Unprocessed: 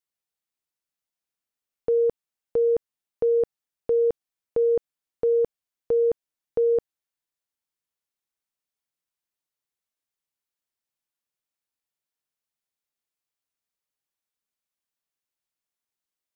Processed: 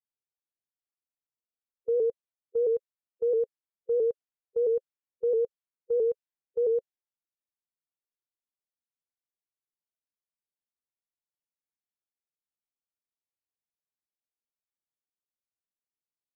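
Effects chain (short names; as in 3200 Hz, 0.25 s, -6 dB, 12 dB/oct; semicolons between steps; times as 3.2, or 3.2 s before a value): harmonic-percussive split percussive -14 dB; low-pass opened by the level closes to 810 Hz, open at -21 dBFS; shaped vibrato saw up 6 Hz, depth 100 cents; gain -4.5 dB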